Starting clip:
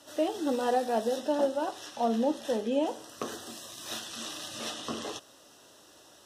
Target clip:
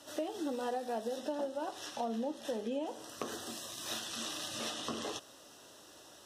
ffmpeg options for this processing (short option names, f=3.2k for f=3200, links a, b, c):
-af "acompressor=threshold=-35dB:ratio=4"